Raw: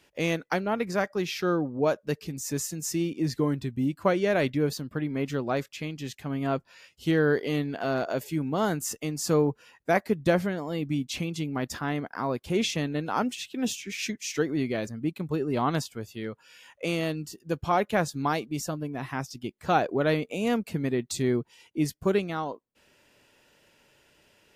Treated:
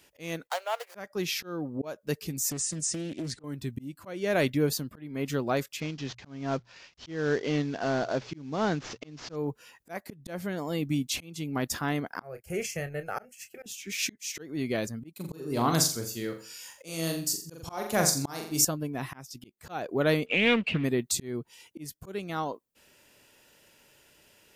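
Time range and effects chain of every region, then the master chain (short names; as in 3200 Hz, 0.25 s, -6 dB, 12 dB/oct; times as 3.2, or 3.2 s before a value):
0.47–0.95 median filter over 25 samples + steep high-pass 550 Hz 48 dB/oct
2.5–3.44 brick-wall FIR low-pass 9800 Hz + compressor 12:1, threshold -30 dBFS + Doppler distortion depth 0.45 ms
5.8–9.36 CVSD 32 kbps + high shelf 3000 Hz -3 dB + de-hum 60.45 Hz, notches 2
12.22–13.66 transient shaper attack -2 dB, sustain -7 dB + fixed phaser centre 1000 Hz, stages 6 + doubler 29 ms -11 dB
15.13–18.65 resonant high shelf 4000 Hz +7 dB, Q 1.5 + flutter echo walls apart 7.3 m, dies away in 0.4 s
20.26–20.84 G.711 law mismatch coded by mu + synth low-pass 2800 Hz, resonance Q 5.2 + Doppler distortion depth 0.29 ms
whole clip: auto swell 0.351 s; high shelf 7100 Hz +11.5 dB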